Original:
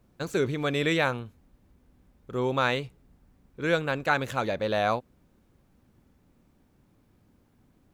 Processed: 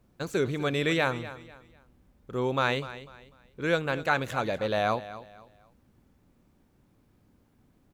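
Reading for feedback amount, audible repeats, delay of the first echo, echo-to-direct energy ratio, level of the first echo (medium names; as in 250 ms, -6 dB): 31%, 2, 248 ms, -14.5 dB, -15.0 dB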